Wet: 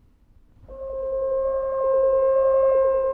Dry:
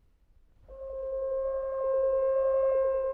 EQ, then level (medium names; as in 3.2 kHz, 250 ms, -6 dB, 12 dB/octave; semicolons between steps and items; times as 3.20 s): fifteen-band graphic EQ 100 Hz +8 dB, 250 Hz +11 dB, 1 kHz +4 dB; +6.0 dB